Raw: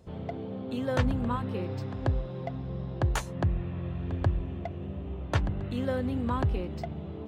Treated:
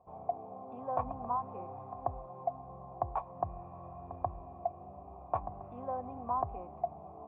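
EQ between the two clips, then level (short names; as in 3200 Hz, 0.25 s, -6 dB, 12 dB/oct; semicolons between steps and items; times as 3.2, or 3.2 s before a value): vocal tract filter a; +10.0 dB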